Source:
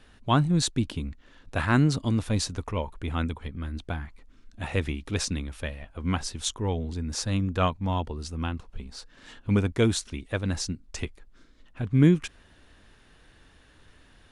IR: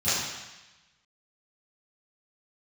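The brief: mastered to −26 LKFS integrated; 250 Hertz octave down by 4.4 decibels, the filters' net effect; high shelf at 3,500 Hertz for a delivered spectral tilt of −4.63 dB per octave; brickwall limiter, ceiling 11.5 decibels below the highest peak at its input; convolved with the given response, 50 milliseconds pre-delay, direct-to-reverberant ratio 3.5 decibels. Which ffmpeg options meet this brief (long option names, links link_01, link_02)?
-filter_complex "[0:a]equalizer=frequency=250:width_type=o:gain=-6.5,highshelf=frequency=3500:gain=4,alimiter=limit=-21.5dB:level=0:latency=1,asplit=2[link_01][link_02];[1:a]atrim=start_sample=2205,adelay=50[link_03];[link_02][link_03]afir=irnorm=-1:irlink=0,volume=-17dB[link_04];[link_01][link_04]amix=inputs=2:normalize=0,volume=5dB"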